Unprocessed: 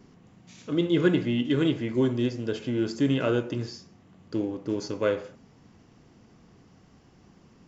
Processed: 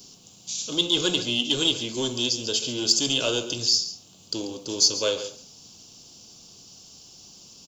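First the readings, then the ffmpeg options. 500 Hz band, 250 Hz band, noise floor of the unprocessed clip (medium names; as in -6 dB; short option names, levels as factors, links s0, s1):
-2.5 dB, -6.0 dB, -57 dBFS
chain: -filter_complex "[0:a]bandreject=f=1900:w=8.9,acrossover=split=500|880[s0][s1][s2];[s0]asoftclip=type=tanh:threshold=0.0531[s3];[s1]acontrast=81[s4];[s3][s4][s2]amix=inputs=3:normalize=0,aexciter=amount=12.2:drive=8.8:freq=3100,aecho=1:1:138:0.211,volume=0.631"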